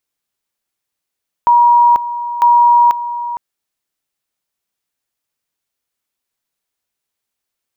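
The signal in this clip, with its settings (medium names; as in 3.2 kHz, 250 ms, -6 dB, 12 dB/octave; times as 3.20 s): two-level tone 955 Hz -5.5 dBFS, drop 13 dB, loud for 0.49 s, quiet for 0.46 s, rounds 2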